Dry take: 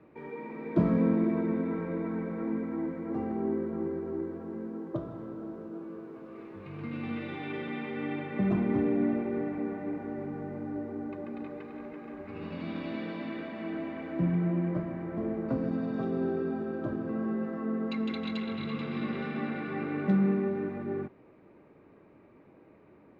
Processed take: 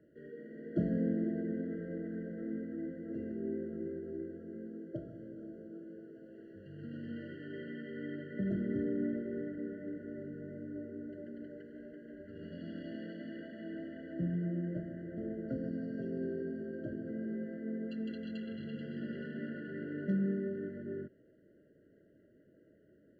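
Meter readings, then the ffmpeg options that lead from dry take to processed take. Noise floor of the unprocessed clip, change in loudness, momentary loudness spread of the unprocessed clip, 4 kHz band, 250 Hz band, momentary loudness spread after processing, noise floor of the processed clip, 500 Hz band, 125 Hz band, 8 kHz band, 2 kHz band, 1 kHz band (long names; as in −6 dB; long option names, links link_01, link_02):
−57 dBFS, −7.0 dB, 14 LU, below −10 dB, −7.0 dB, 14 LU, −65 dBFS, −7.0 dB, −7.0 dB, can't be measured, −9.0 dB, below −20 dB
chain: -af "afftfilt=real='re*eq(mod(floor(b*sr/1024/680),2),0)':imag='im*eq(mod(floor(b*sr/1024/680),2),0)':win_size=1024:overlap=0.75,volume=-7dB"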